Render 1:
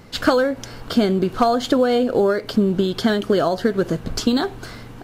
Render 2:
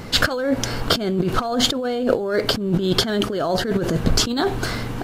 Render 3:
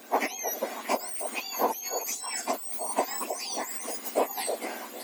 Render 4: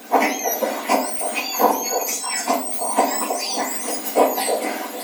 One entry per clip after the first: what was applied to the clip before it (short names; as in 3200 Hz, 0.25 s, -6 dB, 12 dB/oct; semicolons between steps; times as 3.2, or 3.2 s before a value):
negative-ratio compressor -25 dBFS, ratio -1; gain +4.5 dB
spectrum mirrored in octaves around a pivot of 1800 Hz; delay with a stepping band-pass 0.315 s, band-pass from 530 Hz, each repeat 1.4 oct, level -5 dB; gain -7.5 dB
shoebox room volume 600 m³, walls furnished, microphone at 1.9 m; gain +7.5 dB